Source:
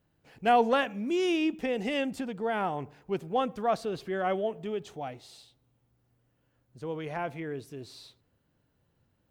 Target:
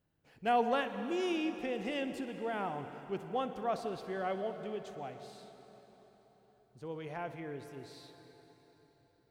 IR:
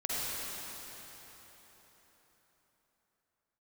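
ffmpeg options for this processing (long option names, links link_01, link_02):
-filter_complex "[0:a]asplit=2[link_01][link_02];[1:a]atrim=start_sample=2205,adelay=62[link_03];[link_02][link_03]afir=irnorm=-1:irlink=0,volume=-15.5dB[link_04];[link_01][link_04]amix=inputs=2:normalize=0,volume=-7dB"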